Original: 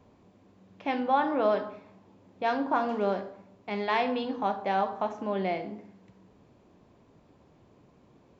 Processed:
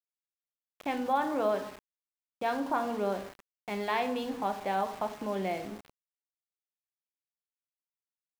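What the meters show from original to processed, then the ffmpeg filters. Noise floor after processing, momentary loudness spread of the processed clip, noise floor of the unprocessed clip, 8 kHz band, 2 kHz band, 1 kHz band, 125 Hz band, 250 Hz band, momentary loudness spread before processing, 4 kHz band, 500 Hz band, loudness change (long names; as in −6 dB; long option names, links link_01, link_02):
below −85 dBFS, 11 LU, −61 dBFS, can't be measured, −3.0 dB, −3.5 dB, −3.0 dB, −3.0 dB, 12 LU, −2.5 dB, −3.0 dB, −3.0 dB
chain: -filter_complex "[0:a]asplit=2[link_01][link_02];[link_02]acompressor=threshold=-40dB:ratio=6,volume=-1dB[link_03];[link_01][link_03]amix=inputs=2:normalize=0,aeval=exprs='val(0)*gte(abs(val(0)),0.0119)':channel_layout=same,volume=-4.5dB"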